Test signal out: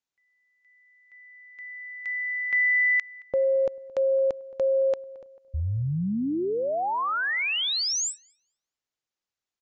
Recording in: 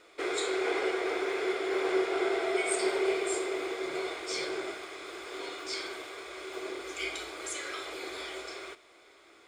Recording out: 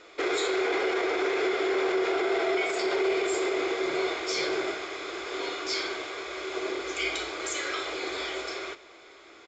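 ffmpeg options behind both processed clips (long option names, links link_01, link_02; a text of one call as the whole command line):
ffmpeg -i in.wav -filter_complex "[0:a]alimiter=level_in=1.5dB:limit=-24dB:level=0:latency=1:release=23,volume=-1.5dB,asplit=2[link_01][link_02];[link_02]adelay=221,lowpass=frequency=1600:poles=1,volume=-20dB,asplit=2[link_03][link_04];[link_04]adelay=221,lowpass=frequency=1600:poles=1,volume=0.5,asplit=2[link_05][link_06];[link_06]adelay=221,lowpass=frequency=1600:poles=1,volume=0.5,asplit=2[link_07][link_08];[link_08]adelay=221,lowpass=frequency=1600:poles=1,volume=0.5[link_09];[link_03][link_05][link_07][link_09]amix=inputs=4:normalize=0[link_10];[link_01][link_10]amix=inputs=2:normalize=0,aresample=16000,aresample=44100,volume=6.5dB" out.wav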